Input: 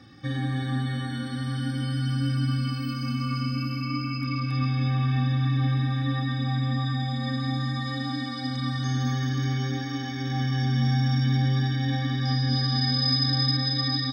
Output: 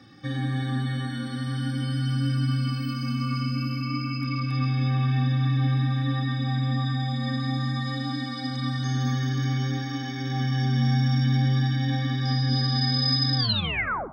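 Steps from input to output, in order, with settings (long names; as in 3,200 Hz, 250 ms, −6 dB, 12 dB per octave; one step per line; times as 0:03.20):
turntable brake at the end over 0.75 s
high-pass filter 100 Hz
on a send: convolution reverb RT60 0.50 s, pre-delay 62 ms, DRR 15 dB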